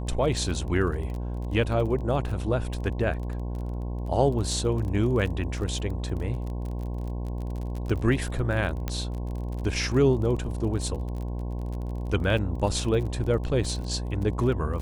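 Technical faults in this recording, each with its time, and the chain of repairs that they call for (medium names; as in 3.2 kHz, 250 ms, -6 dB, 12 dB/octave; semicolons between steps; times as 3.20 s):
buzz 60 Hz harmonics 18 -31 dBFS
crackle 27 per s -33 dBFS
8.88 s: pop -15 dBFS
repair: de-click; de-hum 60 Hz, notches 18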